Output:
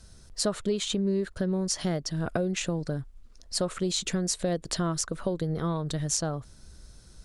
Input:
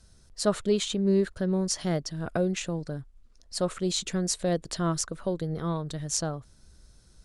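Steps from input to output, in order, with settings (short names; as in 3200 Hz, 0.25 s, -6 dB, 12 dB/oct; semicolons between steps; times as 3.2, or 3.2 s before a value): compressor 4:1, threshold -31 dBFS, peak gain reduction 11 dB; gain +5.5 dB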